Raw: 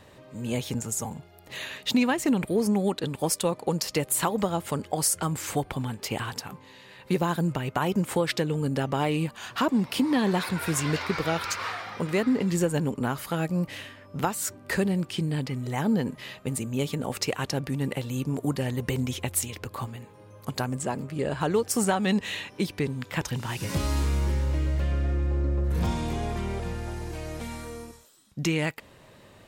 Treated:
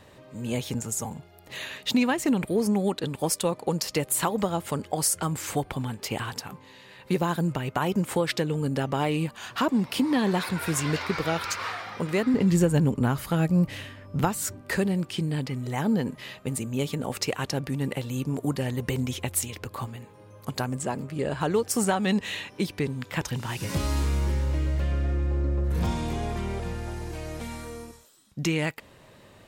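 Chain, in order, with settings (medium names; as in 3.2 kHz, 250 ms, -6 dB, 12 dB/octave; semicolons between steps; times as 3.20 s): 12.34–14.61 s: bass shelf 170 Hz +11.5 dB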